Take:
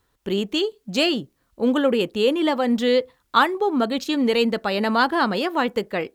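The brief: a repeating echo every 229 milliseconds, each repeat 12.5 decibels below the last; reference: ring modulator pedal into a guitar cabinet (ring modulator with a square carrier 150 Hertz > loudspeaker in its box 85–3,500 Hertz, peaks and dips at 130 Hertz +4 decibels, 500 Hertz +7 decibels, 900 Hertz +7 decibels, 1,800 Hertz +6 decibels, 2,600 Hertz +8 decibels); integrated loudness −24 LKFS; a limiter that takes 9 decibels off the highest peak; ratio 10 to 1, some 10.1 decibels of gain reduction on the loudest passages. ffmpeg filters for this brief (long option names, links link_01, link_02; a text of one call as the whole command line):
ffmpeg -i in.wav -af "acompressor=threshold=-21dB:ratio=10,alimiter=limit=-19dB:level=0:latency=1,aecho=1:1:229|458|687:0.237|0.0569|0.0137,aeval=exprs='val(0)*sgn(sin(2*PI*150*n/s))':channel_layout=same,highpass=85,equalizer=frequency=130:width_type=q:width=4:gain=4,equalizer=frequency=500:width_type=q:width=4:gain=7,equalizer=frequency=900:width_type=q:width=4:gain=7,equalizer=frequency=1800:width_type=q:width=4:gain=6,equalizer=frequency=2600:width_type=q:width=4:gain=8,lowpass=frequency=3500:width=0.5412,lowpass=frequency=3500:width=1.3066,volume=1.5dB" out.wav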